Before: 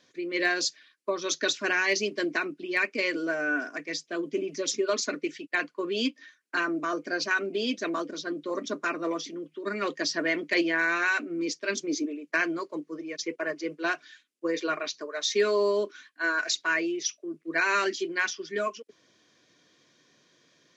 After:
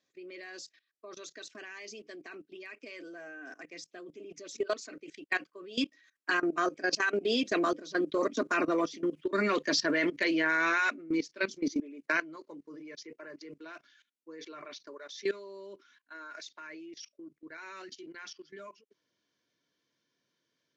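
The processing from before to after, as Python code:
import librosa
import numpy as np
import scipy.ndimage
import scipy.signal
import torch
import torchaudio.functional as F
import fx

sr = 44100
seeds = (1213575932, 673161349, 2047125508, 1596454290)

y = fx.doppler_pass(x, sr, speed_mps=14, closest_m=18.0, pass_at_s=8.89)
y = fx.level_steps(y, sr, step_db=18)
y = y * librosa.db_to_amplitude(8.5)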